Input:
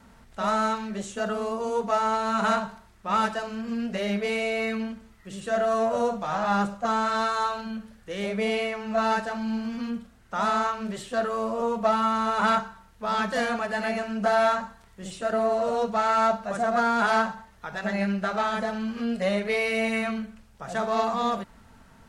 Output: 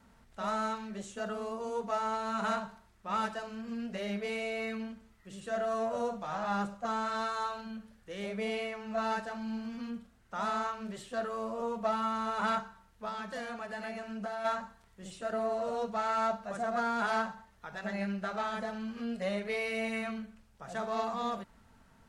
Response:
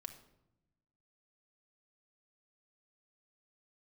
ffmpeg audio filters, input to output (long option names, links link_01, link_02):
-filter_complex "[0:a]asplit=3[link_01][link_02][link_03];[link_01]afade=type=out:start_time=13.08:duration=0.02[link_04];[link_02]acompressor=threshold=-28dB:ratio=4,afade=type=in:start_time=13.08:duration=0.02,afade=type=out:start_time=14.44:duration=0.02[link_05];[link_03]afade=type=in:start_time=14.44:duration=0.02[link_06];[link_04][link_05][link_06]amix=inputs=3:normalize=0,volume=-8.5dB"